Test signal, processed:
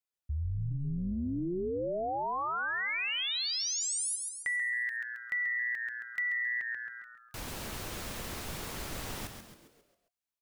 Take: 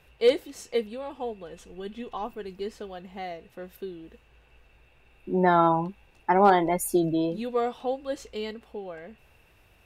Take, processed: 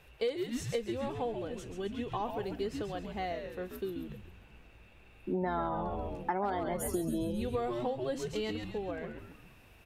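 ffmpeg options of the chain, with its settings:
-filter_complex "[0:a]asplit=2[s0][s1];[s1]asplit=6[s2][s3][s4][s5][s6][s7];[s2]adelay=135,afreqshift=-120,volume=0.447[s8];[s3]adelay=270,afreqshift=-240,volume=0.214[s9];[s4]adelay=405,afreqshift=-360,volume=0.102[s10];[s5]adelay=540,afreqshift=-480,volume=0.0495[s11];[s6]adelay=675,afreqshift=-600,volume=0.0237[s12];[s7]adelay=810,afreqshift=-720,volume=0.0114[s13];[s8][s9][s10][s11][s12][s13]amix=inputs=6:normalize=0[s14];[s0][s14]amix=inputs=2:normalize=0,acompressor=threshold=0.0316:ratio=8"

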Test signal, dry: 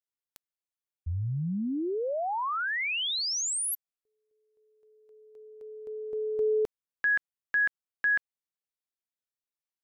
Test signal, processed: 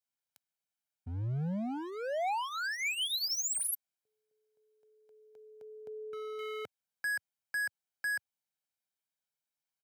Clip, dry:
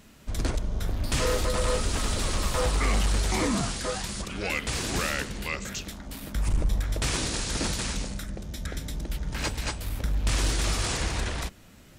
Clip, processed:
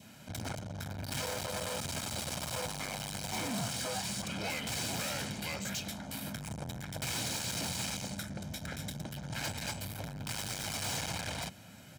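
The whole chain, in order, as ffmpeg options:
-af "asoftclip=type=hard:threshold=0.02,adynamicequalizer=threshold=0.002:dfrequency=1500:dqfactor=3.3:tfrequency=1500:tqfactor=3.3:attack=5:release=100:ratio=0.375:range=2:mode=cutabove:tftype=bell,highpass=f=100:w=0.5412,highpass=f=100:w=1.3066,aecho=1:1:1.3:0.55"

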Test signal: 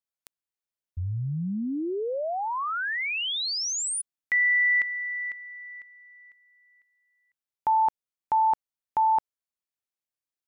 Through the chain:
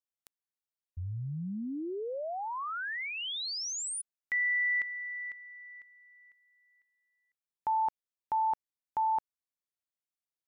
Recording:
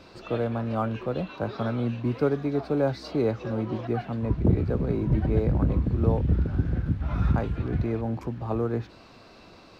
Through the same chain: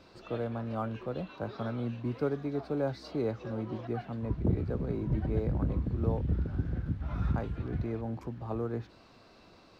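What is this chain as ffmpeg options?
-af "equalizer=f=2500:t=o:w=0.27:g=-2,volume=0.447"

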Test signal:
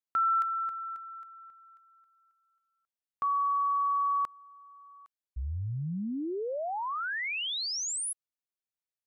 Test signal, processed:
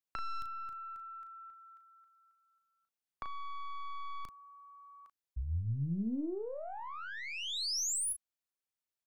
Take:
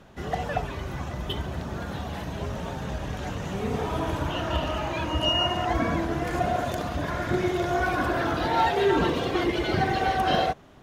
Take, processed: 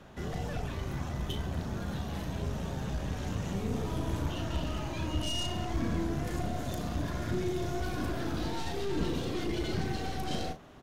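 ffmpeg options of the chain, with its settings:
-filter_complex "[0:a]aeval=exprs='(tanh(15.8*val(0)+0.4)-tanh(0.4))/15.8':c=same,acrossover=split=340|4000[s0][s1][s2];[s1]acompressor=threshold=0.00316:ratio=3:attack=19:release=29:knee=2.83:detection=peak[s3];[s0][s3][s2]amix=inputs=3:normalize=0,asplit=2[s4][s5];[s5]adelay=36,volume=0.398[s6];[s4][s6]amix=inputs=2:normalize=0"

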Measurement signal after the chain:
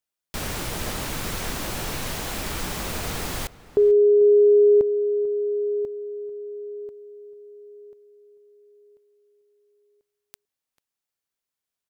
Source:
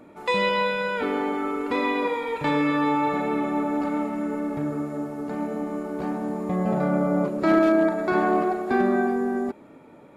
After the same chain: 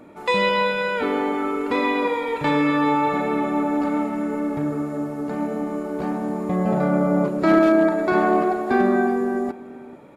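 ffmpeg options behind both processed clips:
-filter_complex "[0:a]asplit=2[s0][s1];[s1]adelay=443.1,volume=0.126,highshelf=f=4000:g=-9.97[s2];[s0][s2]amix=inputs=2:normalize=0,volume=1.41"

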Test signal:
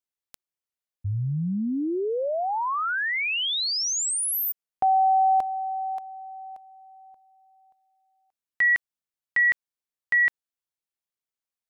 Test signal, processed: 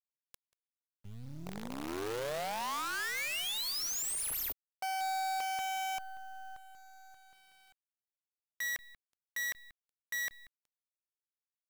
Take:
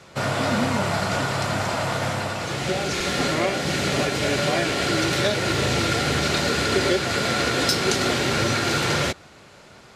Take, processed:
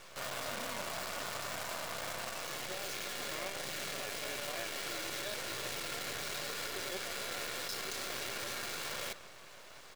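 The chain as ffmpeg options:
-filter_complex "[0:a]highpass=f=660:p=1,aecho=1:1:1.8:0.3,areverse,acompressor=threshold=0.0141:ratio=6:attack=0.29:release=39:knee=6:detection=peak,areverse,asplit=2[s0][s1];[s1]adelay=186,lowpass=f=1700:p=1,volume=0.282,asplit=2[s2][s3];[s3]adelay=186,lowpass=f=1700:p=1,volume=0.3,asplit=2[s4][s5];[s5]adelay=186,lowpass=f=1700:p=1,volume=0.3[s6];[s0][s2][s4][s6]amix=inputs=4:normalize=0,acrusher=bits=7:dc=4:mix=0:aa=0.000001"

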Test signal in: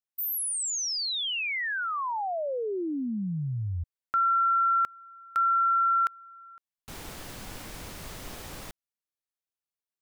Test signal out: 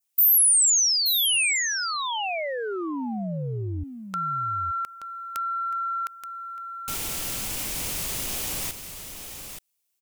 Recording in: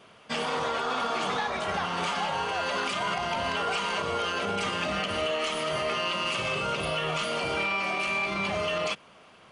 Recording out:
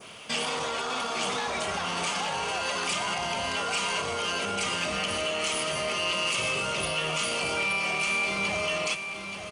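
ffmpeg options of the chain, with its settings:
-af "adynamicequalizer=threshold=0.00562:dfrequency=3200:dqfactor=1.8:tfrequency=3200:tqfactor=1.8:attack=5:release=100:ratio=0.375:range=2:mode=cutabove:tftype=bell,acompressor=threshold=0.0158:ratio=3:attack=0.41:release=52:knee=6:detection=peak,aecho=1:1:877:0.376,aexciter=amount=2.4:drive=5.1:freq=2300,volume=2"

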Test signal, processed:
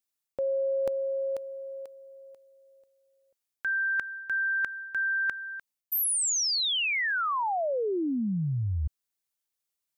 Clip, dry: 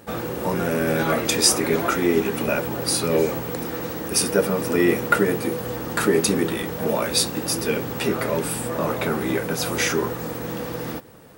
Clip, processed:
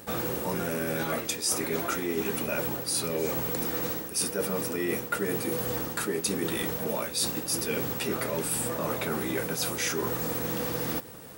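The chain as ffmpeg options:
-af "highshelf=f=3700:g=8,areverse,acompressor=threshold=0.0447:ratio=6,areverse"

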